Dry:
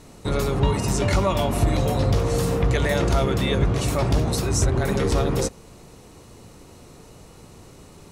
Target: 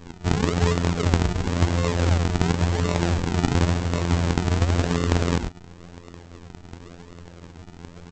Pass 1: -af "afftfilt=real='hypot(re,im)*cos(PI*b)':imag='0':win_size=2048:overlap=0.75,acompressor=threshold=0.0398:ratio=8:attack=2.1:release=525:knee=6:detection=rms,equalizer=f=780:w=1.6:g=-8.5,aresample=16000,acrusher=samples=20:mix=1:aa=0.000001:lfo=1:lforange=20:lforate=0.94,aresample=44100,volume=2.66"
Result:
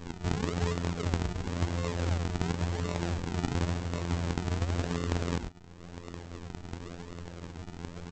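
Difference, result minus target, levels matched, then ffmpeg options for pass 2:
compression: peak gain reduction +10 dB
-af "afftfilt=real='hypot(re,im)*cos(PI*b)':imag='0':win_size=2048:overlap=0.75,acompressor=threshold=0.15:ratio=8:attack=2.1:release=525:knee=6:detection=rms,equalizer=f=780:w=1.6:g=-8.5,aresample=16000,acrusher=samples=20:mix=1:aa=0.000001:lfo=1:lforange=20:lforate=0.94,aresample=44100,volume=2.66"

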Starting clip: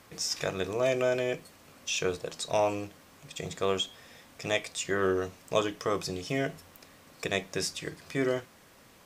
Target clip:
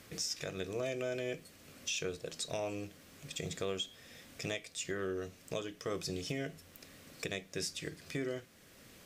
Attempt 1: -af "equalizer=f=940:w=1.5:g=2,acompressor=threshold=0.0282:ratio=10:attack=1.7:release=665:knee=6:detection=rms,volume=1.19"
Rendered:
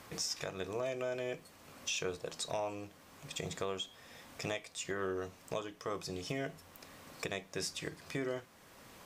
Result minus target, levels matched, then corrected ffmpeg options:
1 kHz band +5.0 dB
-af "equalizer=f=940:w=1.5:g=-10,acompressor=threshold=0.0282:ratio=10:attack=1.7:release=665:knee=6:detection=rms,volume=1.19"

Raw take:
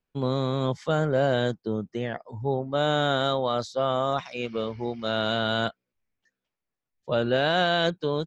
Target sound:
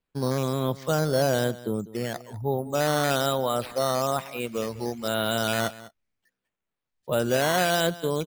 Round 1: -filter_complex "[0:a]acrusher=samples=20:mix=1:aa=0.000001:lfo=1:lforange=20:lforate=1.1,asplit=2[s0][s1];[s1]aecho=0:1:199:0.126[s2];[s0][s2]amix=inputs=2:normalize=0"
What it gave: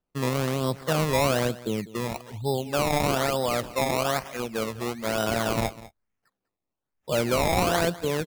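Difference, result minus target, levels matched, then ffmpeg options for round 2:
decimation with a swept rate: distortion +10 dB
-filter_complex "[0:a]acrusher=samples=6:mix=1:aa=0.000001:lfo=1:lforange=6:lforate=1.1,asplit=2[s0][s1];[s1]aecho=0:1:199:0.126[s2];[s0][s2]amix=inputs=2:normalize=0"

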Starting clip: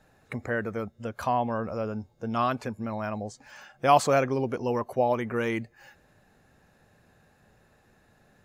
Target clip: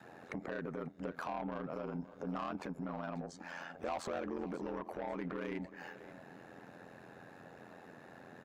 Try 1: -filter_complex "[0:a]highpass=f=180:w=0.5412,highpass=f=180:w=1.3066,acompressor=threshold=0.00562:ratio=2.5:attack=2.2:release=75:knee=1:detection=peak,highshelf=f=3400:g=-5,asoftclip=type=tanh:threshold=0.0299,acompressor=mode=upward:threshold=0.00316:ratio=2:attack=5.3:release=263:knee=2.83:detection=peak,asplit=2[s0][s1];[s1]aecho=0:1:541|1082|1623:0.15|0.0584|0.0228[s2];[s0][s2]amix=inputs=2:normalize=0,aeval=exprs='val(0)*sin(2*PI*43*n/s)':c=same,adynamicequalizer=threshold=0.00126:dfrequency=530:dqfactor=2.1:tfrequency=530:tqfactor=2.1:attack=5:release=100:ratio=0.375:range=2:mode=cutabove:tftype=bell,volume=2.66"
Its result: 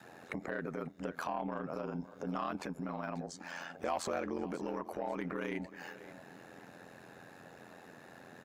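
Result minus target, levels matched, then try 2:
saturation: distortion -10 dB; 8 kHz band +5.5 dB
-filter_complex "[0:a]highpass=f=180:w=0.5412,highpass=f=180:w=1.3066,acompressor=threshold=0.00562:ratio=2.5:attack=2.2:release=75:knee=1:detection=peak,highshelf=f=3400:g=-14.5,asoftclip=type=tanh:threshold=0.0119,acompressor=mode=upward:threshold=0.00316:ratio=2:attack=5.3:release=263:knee=2.83:detection=peak,asplit=2[s0][s1];[s1]aecho=0:1:541|1082|1623:0.15|0.0584|0.0228[s2];[s0][s2]amix=inputs=2:normalize=0,aeval=exprs='val(0)*sin(2*PI*43*n/s)':c=same,adynamicequalizer=threshold=0.00126:dfrequency=530:dqfactor=2.1:tfrequency=530:tqfactor=2.1:attack=5:release=100:ratio=0.375:range=2:mode=cutabove:tftype=bell,volume=2.66"

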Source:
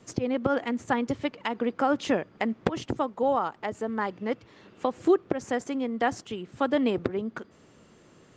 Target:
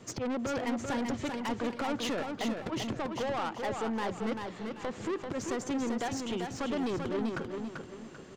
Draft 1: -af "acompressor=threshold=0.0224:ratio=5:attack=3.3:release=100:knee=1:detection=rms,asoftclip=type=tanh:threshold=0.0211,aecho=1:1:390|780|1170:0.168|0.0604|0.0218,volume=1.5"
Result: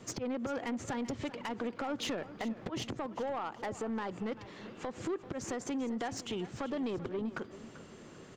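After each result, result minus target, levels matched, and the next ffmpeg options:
compression: peak gain reduction +7.5 dB; echo-to-direct -10.5 dB
-af "acompressor=threshold=0.0668:ratio=5:attack=3.3:release=100:knee=1:detection=rms,asoftclip=type=tanh:threshold=0.0211,aecho=1:1:390|780|1170:0.168|0.0604|0.0218,volume=1.5"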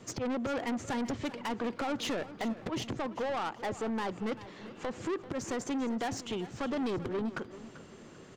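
echo-to-direct -10.5 dB
-af "acompressor=threshold=0.0668:ratio=5:attack=3.3:release=100:knee=1:detection=rms,asoftclip=type=tanh:threshold=0.0211,aecho=1:1:390|780|1170|1560:0.562|0.202|0.0729|0.0262,volume=1.5"

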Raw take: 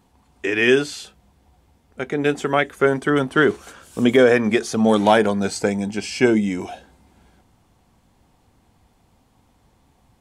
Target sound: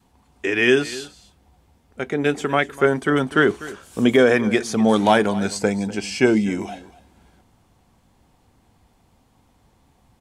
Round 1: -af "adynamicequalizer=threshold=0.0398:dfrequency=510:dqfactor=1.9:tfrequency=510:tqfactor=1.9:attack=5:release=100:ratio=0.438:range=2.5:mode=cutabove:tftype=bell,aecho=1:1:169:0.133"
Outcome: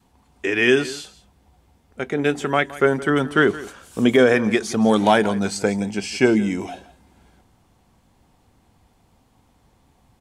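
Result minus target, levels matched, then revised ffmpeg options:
echo 78 ms early
-af "adynamicequalizer=threshold=0.0398:dfrequency=510:dqfactor=1.9:tfrequency=510:tqfactor=1.9:attack=5:release=100:ratio=0.438:range=2.5:mode=cutabove:tftype=bell,aecho=1:1:247:0.133"

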